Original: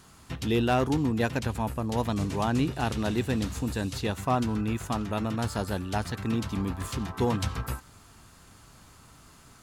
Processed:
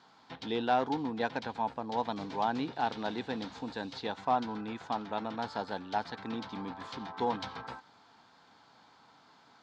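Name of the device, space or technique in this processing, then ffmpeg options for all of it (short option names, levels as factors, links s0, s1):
phone earpiece: -af "highpass=360,equalizer=f=370:t=q:w=4:g=-8,equalizer=f=590:t=q:w=4:g=-5,equalizer=f=850:t=q:w=4:g=5,equalizer=f=1200:t=q:w=4:g=-7,equalizer=f=1900:t=q:w=4:g=-5,equalizer=f=2700:t=q:w=4:g=-10,lowpass=f=4200:w=0.5412,lowpass=f=4200:w=1.3066"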